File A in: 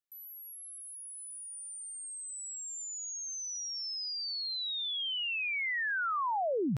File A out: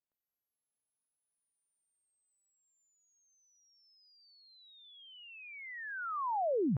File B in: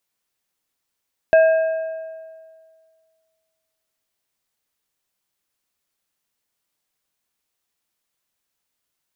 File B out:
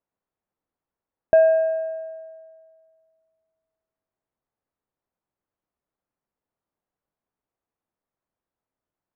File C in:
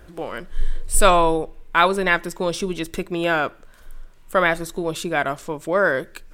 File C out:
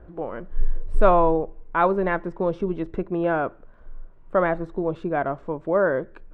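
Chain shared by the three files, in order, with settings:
low-pass filter 1,000 Hz 12 dB per octave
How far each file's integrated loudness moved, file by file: −3.0, −1.0, −3.0 LU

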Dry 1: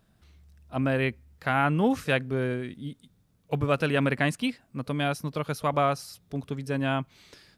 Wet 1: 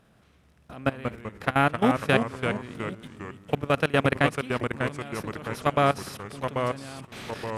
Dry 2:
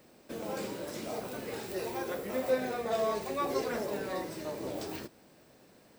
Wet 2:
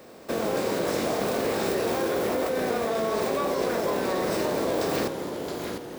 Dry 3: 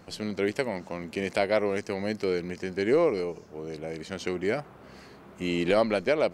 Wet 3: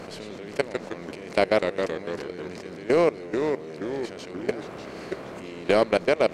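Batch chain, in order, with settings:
compressor on every frequency bin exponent 0.6
output level in coarse steps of 21 dB
delay with pitch and tempo change per echo 81 ms, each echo −2 semitones, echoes 3, each echo −6 dB
loudness normalisation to −27 LKFS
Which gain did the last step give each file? +1.5, +14.5, +3.0 decibels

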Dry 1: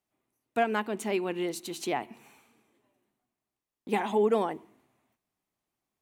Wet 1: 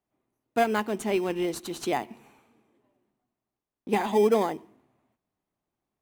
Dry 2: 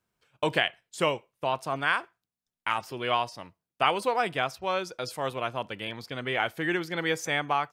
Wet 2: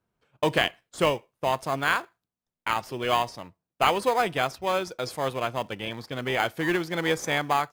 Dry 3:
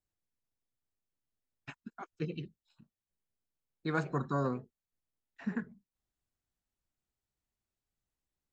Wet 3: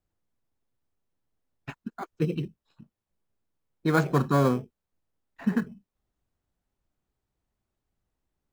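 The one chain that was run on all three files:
in parallel at −10 dB: sample-rate reduction 2,800 Hz, jitter 0%
on the sum: one half of a high-frequency compander decoder only
loudness normalisation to −27 LKFS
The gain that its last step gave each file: +1.0, +1.5, +8.0 decibels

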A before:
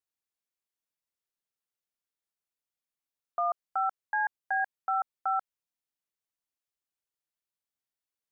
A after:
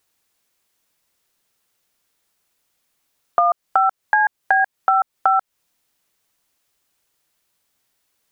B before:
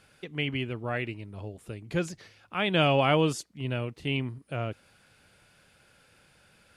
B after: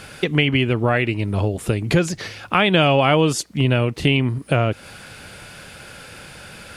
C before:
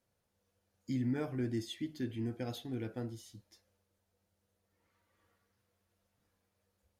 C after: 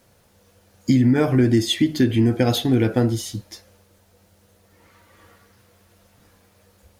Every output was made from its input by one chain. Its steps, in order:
downward compressor 4 to 1, threshold −37 dBFS
loudness normalisation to −19 LKFS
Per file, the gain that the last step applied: +22.0, +21.5, +23.5 decibels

